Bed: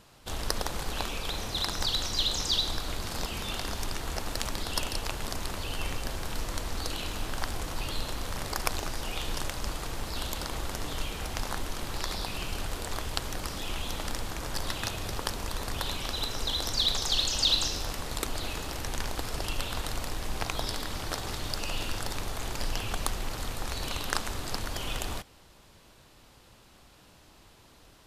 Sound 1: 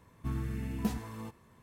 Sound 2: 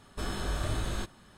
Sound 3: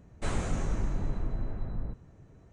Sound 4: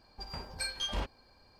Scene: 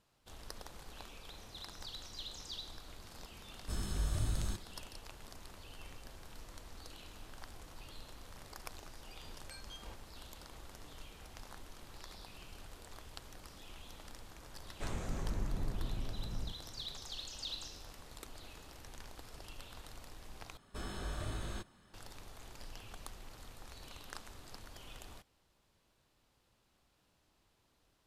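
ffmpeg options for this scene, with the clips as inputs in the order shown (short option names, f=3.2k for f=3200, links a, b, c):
-filter_complex "[2:a]asplit=2[a][b];[0:a]volume=-18dB[c];[a]bass=f=250:g=11,treble=f=4k:g=11[d];[3:a]dynaudnorm=f=420:g=3:m=3.5dB[e];[c]asplit=2[f][g];[f]atrim=end=20.574[h];[b]atrim=end=1.37,asetpts=PTS-STARTPTS,volume=-8.5dB[i];[g]atrim=start=21.936[j];[d]atrim=end=1.37,asetpts=PTS-STARTPTS,volume=-12.5dB,afade=t=in:d=0.004:c=hsin,afade=t=out:st=1.366:d=0.004:c=hsin,adelay=3510[k];[4:a]atrim=end=1.59,asetpts=PTS-STARTPTS,volume=-17dB,afade=t=in:d=0.004:c=hsin,afade=t=out:st=1.586:d=0.004:c=hsin,adelay=392490S[l];[e]atrim=end=2.52,asetpts=PTS-STARTPTS,volume=-9.5dB,afade=t=in:d=0.004:c=hsin,afade=t=out:st=2.516:d=0.004:c=hsin,adelay=14580[m];[h][i]acrossfade=d=0.004:c1=hsin:c2=hsin[n];[n][j]acrossfade=d=0.004:c1=hsin:c2=hsin[o];[o][k][l][m]amix=inputs=4:normalize=0"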